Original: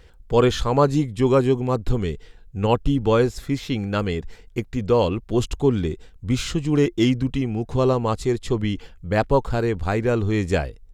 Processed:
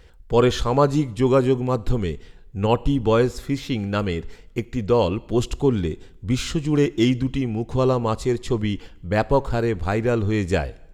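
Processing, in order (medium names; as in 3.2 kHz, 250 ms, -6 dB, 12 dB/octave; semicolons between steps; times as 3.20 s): two-slope reverb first 0.81 s, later 2.8 s, from -25 dB, DRR 19.5 dB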